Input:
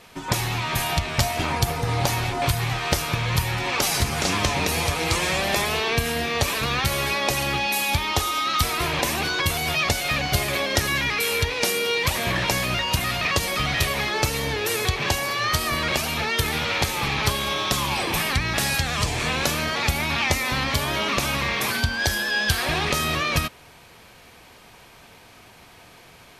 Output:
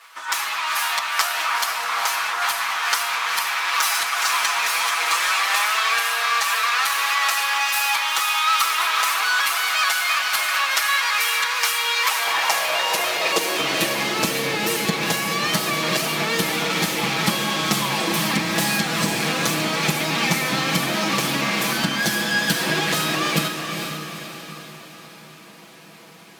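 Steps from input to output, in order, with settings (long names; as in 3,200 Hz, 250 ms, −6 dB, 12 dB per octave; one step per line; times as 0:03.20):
lower of the sound and its delayed copy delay 6.1 ms
high-pass filter sweep 1,200 Hz → 210 Hz, 0:11.98–0:14.12
feedback delay with all-pass diffusion 459 ms, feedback 50%, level −6 dB
level +2 dB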